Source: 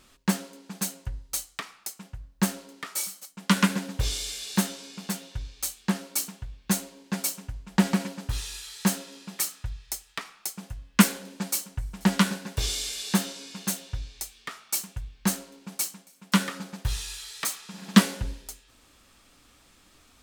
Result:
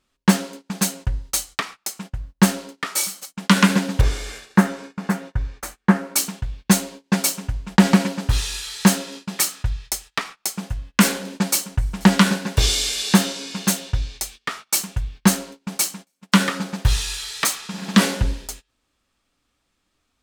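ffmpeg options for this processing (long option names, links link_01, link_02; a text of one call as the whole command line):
ffmpeg -i in.wav -filter_complex "[0:a]asettb=1/sr,asplit=3[link_01][link_02][link_03];[link_01]atrim=end=4.014[link_04];[link_02]atrim=start=4.01:end=6.16,asetpts=PTS-STARTPTS,afade=type=in:duration=0.004:curve=qsin,afade=type=out:start_time=2.146:duration=0.004:curve=qsin,highshelf=frequency=2400:width_type=q:width=1.5:gain=-11.5[link_05];[link_03]atrim=start=6.156[link_06];[link_04][link_05]acrossfade=duration=0.004:curve1=hsin:curve2=qsin[link_07];[link_07][link_06]acrossfade=duration=0.004:curve1=qsin:curve2=hsin,agate=range=-24dB:threshold=-46dB:ratio=16:detection=peak,highshelf=frequency=8500:gain=-6.5,alimiter=level_in=12dB:limit=-1dB:release=50:level=0:latency=1,volume=-1dB" out.wav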